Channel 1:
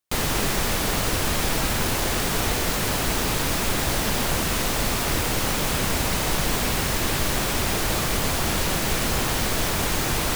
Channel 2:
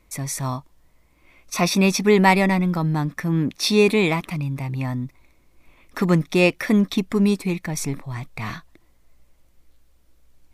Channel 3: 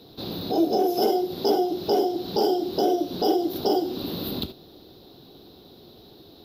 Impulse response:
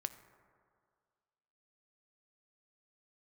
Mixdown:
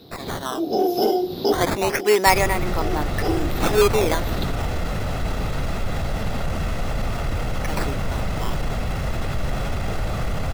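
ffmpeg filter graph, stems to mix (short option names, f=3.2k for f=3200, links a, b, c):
-filter_complex "[0:a]lowpass=f=1.5k:p=1,aecho=1:1:1.5:0.43,alimiter=limit=-19dB:level=0:latency=1:release=13,adelay=2150,volume=-1dB[a];[1:a]highpass=f=360:w=0.5412,highpass=f=360:w=1.3066,acrusher=samples=12:mix=1:aa=0.000001:lfo=1:lforange=19.2:lforate=0.26,volume=0.5dB,asplit=3[b][c][d];[b]atrim=end=4.71,asetpts=PTS-STARTPTS,afade=t=out:st=4.706:d=0.004:c=hsin[e];[c]atrim=start=4.71:end=7.58,asetpts=PTS-STARTPTS,volume=0[f];[d]atrim=start=7.58,asetpts=PTS-STARTPTS,afade=t=in:d=0.004:c=hsin[g];[e][f][g]concat=n=3:v=0:a=1,asplit=2[h][i];[2:a]volume=1.5dB[j];[i]apad=whole_len=284261[k];[j][k]sidechaincompress=threshold=-36dB:ratio=3:attack=7.4:release=259[l];[a][h][l]amix=inputs=3:normalize=0,lowshelf=f=180:g=6"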